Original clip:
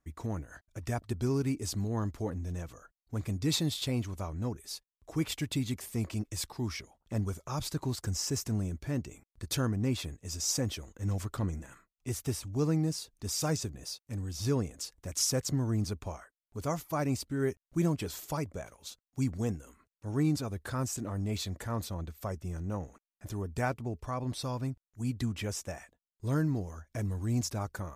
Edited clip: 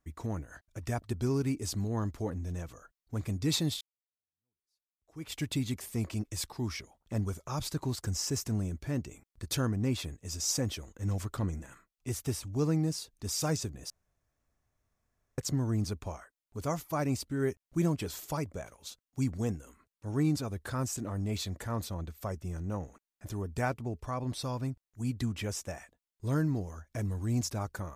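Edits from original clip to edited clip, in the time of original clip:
0:03.81–0:05.39: fade in exponential
0:13.90–0:15.38: fill with room tone

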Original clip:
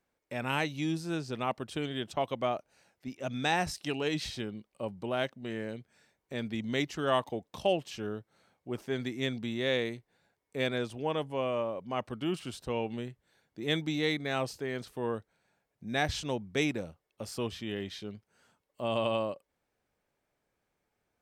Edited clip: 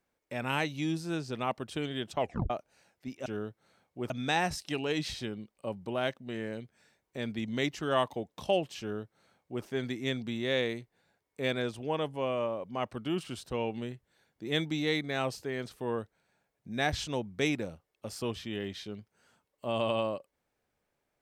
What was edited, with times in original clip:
0:02.20: tape stop 0.30 s
0:07.96–0:08.80: duplicate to 0:03.26

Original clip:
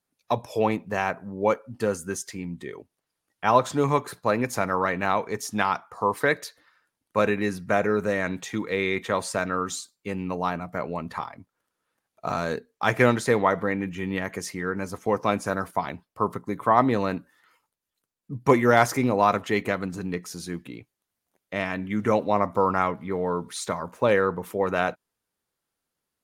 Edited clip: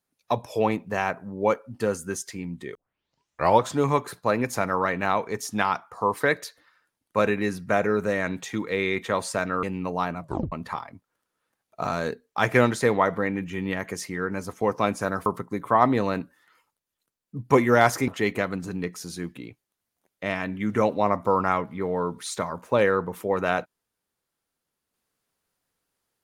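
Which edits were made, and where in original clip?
0:02.75: tape start 0.90 s
0:09.63–0:10.08: remove
0:10.67: tape stop 0.30 s
0:15.71–0:16.22: remove
0:19.04–0:19.38: remove

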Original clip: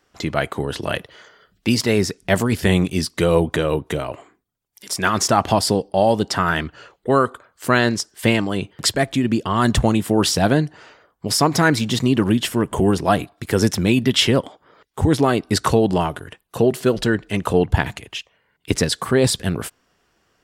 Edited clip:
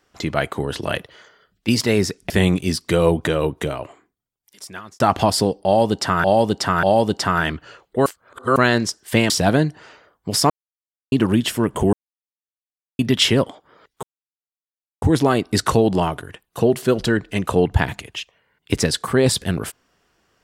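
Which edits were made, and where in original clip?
0:00.97–0:01.68: fade out, to −7 dB
0:02.30–0:02.59: remove
0:03.90–0:05.29: fade out
0:05.94–0:06.53: repeat, 3 plays
0:07.17–0:07.67: reverse
0:08.41–0:10.27: remove
0:11.47–0:12.09: silence
0:12.90–0:13.96: silence
0:15.00: splice in silence 0.99 s

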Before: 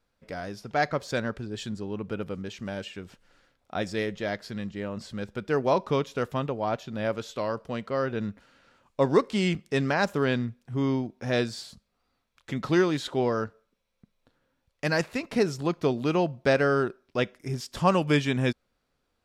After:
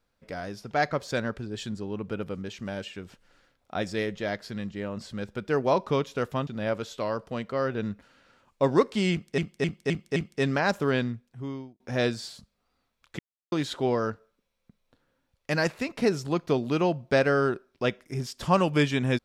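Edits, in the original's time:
0:06.47–0:06.85: remove
0:09.50–0:09.76: repeat, 5 plays
0:10.29–0:11.14: fade out
0:12.53–0:12.86: silence

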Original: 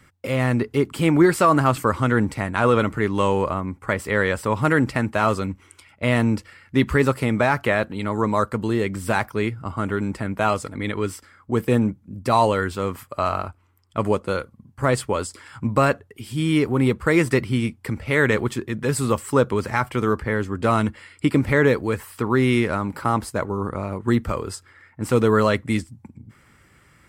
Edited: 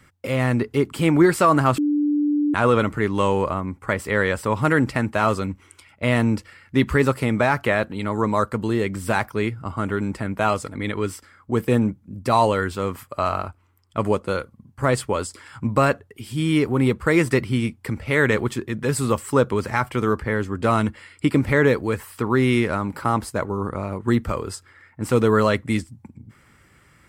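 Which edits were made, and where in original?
0:01.78–0:02.54: beep over 294 Hz −17 dBFS

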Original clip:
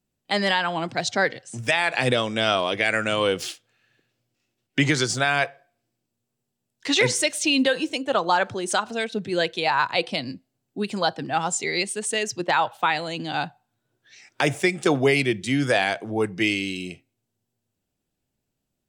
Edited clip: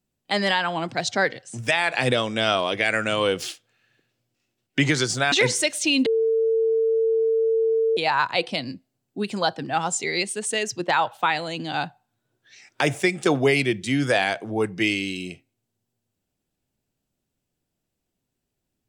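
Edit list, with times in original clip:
0:05.32–0:06.92: remove
0:07.66–0:09.57: beep over 449 Hz −17.5 dBFS

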